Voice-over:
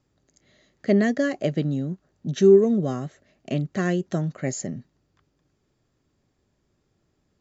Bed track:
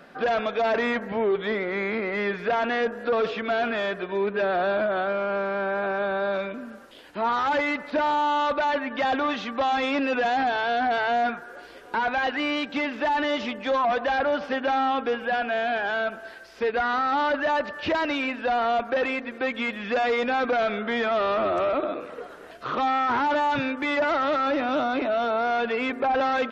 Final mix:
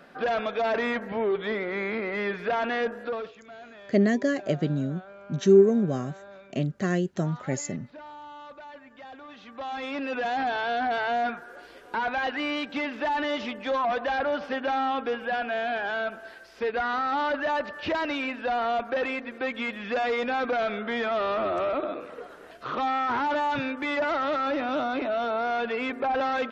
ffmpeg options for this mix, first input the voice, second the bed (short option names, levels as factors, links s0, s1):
-filter_complex "[0:a]adelay=3050,volume=0.794[s0];[1:a]volume=5.62,afade=t=out:st=2.92:d=0.41:silence=0.125893,afade=t=in:st=9.28:d=1.24:silence=0.133352[s1];[s0][s1]amix=inputs=2:normalize=0"